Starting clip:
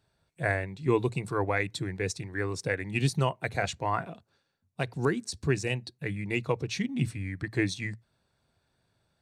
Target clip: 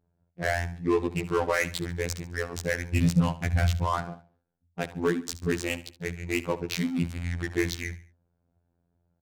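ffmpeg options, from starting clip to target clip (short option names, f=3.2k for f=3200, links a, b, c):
-filter_complex "[0:a]asettb=1/sr,asplit=3[a][b][c];[a]atrim=end=6.764[d];[b]atrim=start=6.76:end=7.51,asetpts=PTS-STARTPTS,afade=t=in:d=0.004:c=qsin,afade=t=out:st=0.746:d=0.004:c=qsin,aeval=exprs='val(0)+0.5*0.00891*sgn(val(0))':c=same[e];[c]atrim=start=7.506[f];[d][e]acrossfade=d=0.004:c1=hsin:c2=qsin[g];[g][f]acrossfade=d=0.004:c1=qsin:c2=hsin,bandreject=f=50:t=h:w=6,bandreject=f=100:t=h:w=6,asettb=1/sr,asplit=3[h][i][j];[h]atrim=end=1.174[k];[i]atrim=start=1.17:end=1.81,asetpts=PTS-STARTPTS,afade=t=in:d=0.004:c=qsin,afade=t=out:st=0.636:d=0.004:c=qsin,aecho=1:1:6.5:0.88,atrim=end_sample=28224[l];[j]atrim=start=1.806[m];[k][l]acrossfade=d=0.004:c1=hsin:c2=qsin[n];[n][m]acrossfade=d=0.004:c1=qsin:c2=hsin,asplit=3[o][p][q];[o]afade=t=out:st=2.93:d=0.02[r];[p]asubboost=boost=9.5:cutoff=160,afade=t=in:st=2.93:d=0.02,afade=t=out:st=3.85:d=0.02[s];[q]afade=t=in:st=3.85:d=0.02[t];[r][s][t]amix=inputs=3:normalize=0,asplit=2[u][v];[v]acontrast=73,volume=-1dB[w];[u][w]amix=inputs=2:normalize=0,afftfilt=real='hypot(re,im)*cos(PI*b)':imag='0':win_size=2048:overlap=0.75,adynamicsmooth=sensitivity=4:basefreq=590,asoftclip=type=tanh:threshold=-9dB,asplit=2[x][y];[y]aecho=0:1:71|142|213:0.15|0.0584|0.0228[z];[x][z]amix=inputs=2:normalize=0,adynamicequalizer=threshold=0.00562:dfrequency=5100:dqfactor=0.7:tfrequency=5100:tqfactor=0.7:attack=5:release=100:ratio=0.375:range=2:mode=boostabove:tftype=highshelf,volume=-3.5dB"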